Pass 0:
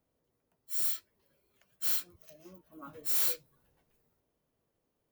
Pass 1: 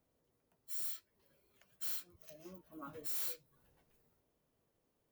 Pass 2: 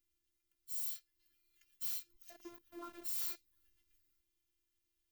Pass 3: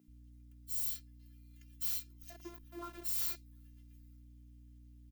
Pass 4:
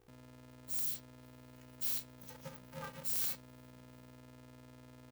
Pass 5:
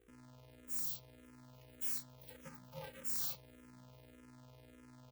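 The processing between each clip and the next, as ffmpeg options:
-af "acompressor=threshold=0.00562:ratio=2"
-filter_complex "[0:a]acrossover=split=210|1800[s0][s1][s2];[s1]aeval=exprs='val(0)*gte(abs(val(0)),0.00188)':c=same[s3];[s0][s3][s2]amix=inputs=3:normalize=0,afftfilt=real='hypot(re,im)*cos(PI*b)':imag='0':win_size=512:overlap=0.75,volume=1.5"
-filter_complex "[0:a]aeval=exprs='val(0)+0.00126*(sin(2*PI*60*n/s)+sin(2*PI*2*60*n/s)/2+sin(2*PI*3*60*n/s)/3+sin(2*PI*4*60*n/s)/4+sin(2*PI*5*60*n/s)/5)':c=same,acrossover=split=180[s0][s1];[s0]adelay=80[s2];[s2][s1]amix=inputs=2:normalize=0,volume=1.5"
-af "aeval=exprs='val(0)*sgn(sin(2*PI*190*n/s))':c=same"
-filter_complex "[0:a]asplit=2[s0][s1];[s1]afreqshift=-1.7[s2];[s0][s2]amix=inputs=2:normalize=1"

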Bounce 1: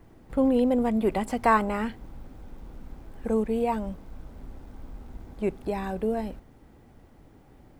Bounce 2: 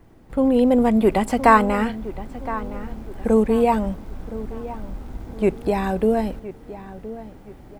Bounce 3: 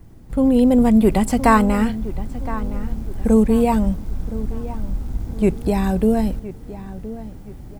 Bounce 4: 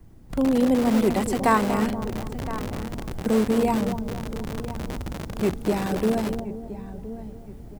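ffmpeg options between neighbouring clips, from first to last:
-filter_complex "[0:a]asplit=2[s0][s1];[s1]adelay=1017,lowpass=f=2400:p=1,volume=0.178,asplit=2[s2][s3];[s3]adelay=1017,lowpass=f=2400:p=1,volume=0.36,asplit=2[s4][s5];[s5]adelay=1017,lowpass=f=2400:p=1,volume=0.36[s6];[s0][s2][s4][s6]amix=inputs=4:normalize=0,dynaudnorm=f=110:g=11:m=2.11,volume=1.26"
-af "bass=f=250:g=11,treble=f=4000:g=9,volume=0.794"
-filter_complex "[0:a]acrossover=split=170|1100[s0][s1][s2];[s0]aeval=exprs='(mod(12.6*val(0)+1,2)-1)/12.6':c=same[s3];[s1]aecho=1:1:239|478|717|956|1195:0.398|0.183|0.0842|0.0388|0.0178[s4];[s3][s4][s2]amix=inputs=3:normalize=0,volume=0.562"

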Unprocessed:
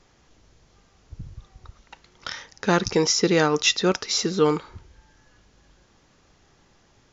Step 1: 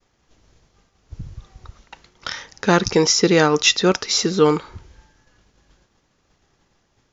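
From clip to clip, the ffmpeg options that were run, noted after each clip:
-af "agate=range=0.0224:threshold=0.00282:ratio=3:detection=peak,volume=1.68"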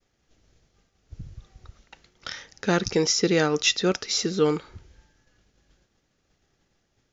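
-af "equalizer=f=1000:w=2.9:g=-7.5,volume=0.501"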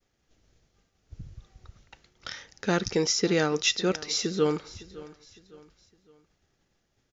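-af "aecho=1:1:559|1118|1677:0.112|0.0449|0.018,volume=0.708"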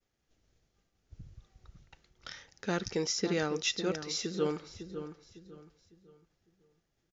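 -filter_complex "[0:a]asplit=2[s0][s1];[s1]adelay=553,lowpass=f=1000:p=1,volume=0.355,asplit=2[s2][s3];[s3]adelay=553,lowpass=f=1000:p=1,volume=0.35,asplit=2[s4][s5];[s5]adelay=553,lowpass=f=1000:p=1,volume=0.35,asplit=2[s6][s7];[s7]adelay=553,lowpass=f=1000:p=1,volume=0.35[s8];[s0][s2][s4][s6][s8]amix=inputs=5:normalize=0,volume=0.447"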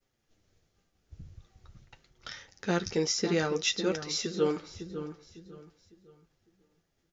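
-af "flanger=delay=7.2:depth=6.5:regen=-33:speed=0.48:shape=triangular,volume=2.11"

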